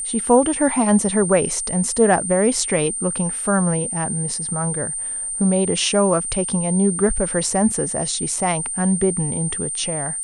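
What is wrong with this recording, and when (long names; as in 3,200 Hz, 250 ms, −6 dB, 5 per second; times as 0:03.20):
whistle 8,900 Hz −24 dBFS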